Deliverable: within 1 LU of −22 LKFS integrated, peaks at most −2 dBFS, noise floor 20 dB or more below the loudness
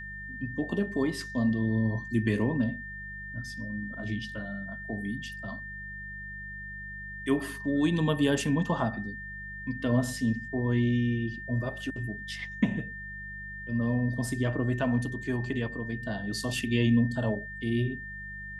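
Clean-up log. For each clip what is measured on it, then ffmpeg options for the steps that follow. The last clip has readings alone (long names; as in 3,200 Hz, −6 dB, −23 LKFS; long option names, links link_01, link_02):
mains hum 50 Hz; hum harmonics up to 200 Hz; level of the hum −44 dBFS; interfering tone 1,800 Hz; level of the tone −39 dBFS; integrated loudness −30.5 LKFS; sample peak −11.5 dBFS; target loudness −22.0 LKFS
→ -af "bandreject=frequency=50:width_type=h:width=4,bandreject=frequency=100:width_type=h:width=4,bandreject=frequency=150:width_type=h:width=4,bandreject=frequency=200:width_type=h:width=4"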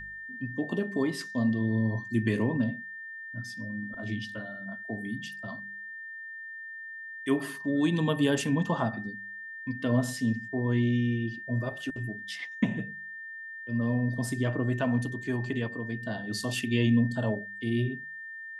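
mains hum none found; interfering tone 1,800 Hz; level of the tone −39 dBFS
→ -af "bandreject=frequency=1800:width=30"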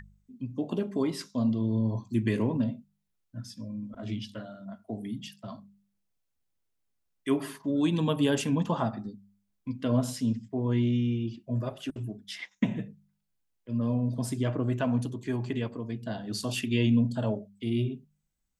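interfering tone none found; integrated loudness −30.5 LKFS; sample peak −12.0 dBFS; target loudness −22.0 LKFS
→ -af "volume=8.5dB"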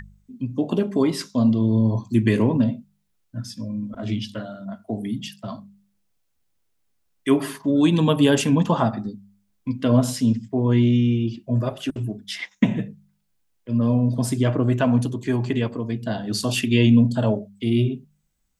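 integrated loudness −22.0 LKFS; sample peak −3.5 dBFS; background noise floor −70 dBFS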